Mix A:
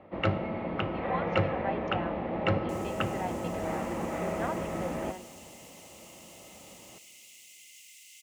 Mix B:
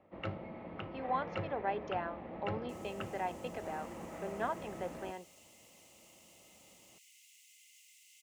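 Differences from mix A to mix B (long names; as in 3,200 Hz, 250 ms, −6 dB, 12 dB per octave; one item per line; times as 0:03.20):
first sound −11.5 dB
second sound −8.0 dB
reverb: off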